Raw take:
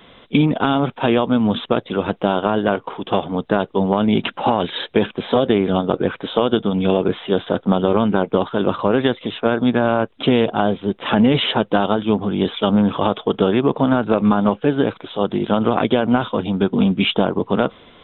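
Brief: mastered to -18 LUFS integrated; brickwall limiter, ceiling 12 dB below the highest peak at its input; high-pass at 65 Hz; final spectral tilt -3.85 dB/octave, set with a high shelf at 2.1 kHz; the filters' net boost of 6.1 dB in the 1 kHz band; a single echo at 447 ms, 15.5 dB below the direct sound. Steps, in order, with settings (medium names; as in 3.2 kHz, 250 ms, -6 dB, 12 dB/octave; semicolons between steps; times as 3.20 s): high-pass 65 Hz; peaking EQ 1 kHz +6.5 dB; treble shelf 2.1 kHz +7 dB; peak limiter -9 dBFS; delay 447 ms -15.5 dB; trim +3 dB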